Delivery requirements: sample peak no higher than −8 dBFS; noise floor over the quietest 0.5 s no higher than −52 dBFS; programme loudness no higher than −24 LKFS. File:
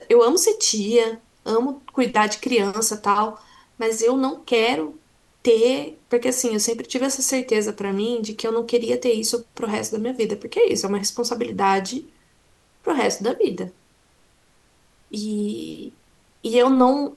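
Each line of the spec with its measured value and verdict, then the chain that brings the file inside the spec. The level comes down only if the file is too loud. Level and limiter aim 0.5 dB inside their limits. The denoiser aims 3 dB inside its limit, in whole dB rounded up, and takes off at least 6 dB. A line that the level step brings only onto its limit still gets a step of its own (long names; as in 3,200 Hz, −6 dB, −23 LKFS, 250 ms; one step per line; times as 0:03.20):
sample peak −4.5 dBFS: out of spec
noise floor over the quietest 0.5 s −59 dBFS: in spec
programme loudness −21.5 LKFS: out of spec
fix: level −3 dB
brickwall limiter −8.5 dBFS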